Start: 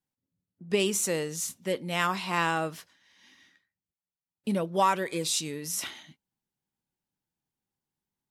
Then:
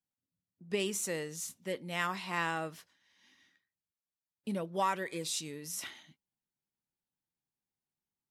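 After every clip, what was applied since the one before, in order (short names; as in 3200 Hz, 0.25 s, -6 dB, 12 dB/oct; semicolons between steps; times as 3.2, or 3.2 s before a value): dynamic EQ 1900 Hz, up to +5 dB, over -47 dBFS, Q 4.5; gain -7.5 dB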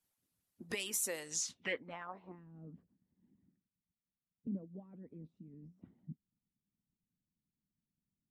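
harmonic-percussive split harmonic -17 dB; compressor 3:1, threshold -53 dBFS, peak gain reduction 14.5 dB; low-pass sweep 12000 Hz -> 200 Hz, 1.19–2.46; gain +12 dB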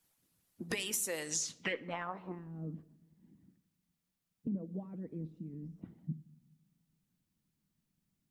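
compressor 5:1, threshold -41 dBFS, peak gain reduction 8.5 dB; on a send at -13.5 dB: reverb RT60 0.95 s, pre-delay 6 ms; on the sum: gain +8 dB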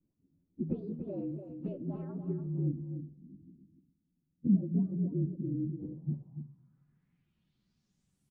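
inharmonic rescaling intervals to 116%; echo 0.29 s -8 dB; low-pass sweep 280 Hz -> 10000 Hz, 5.57–8.28; gain +8 dB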